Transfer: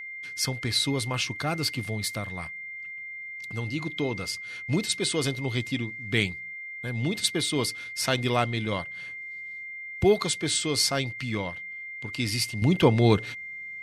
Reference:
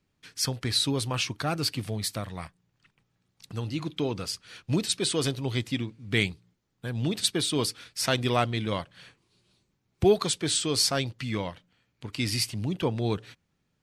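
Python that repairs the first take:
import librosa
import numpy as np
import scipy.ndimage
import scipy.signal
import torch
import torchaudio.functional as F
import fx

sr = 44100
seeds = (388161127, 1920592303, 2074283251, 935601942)

y = fx.notch(x, sr, hz=2100.0, q=30.0)
y = fx.gain(y, sr, db=fx.steps((0.0, 0.0), (12.62, -8.0)))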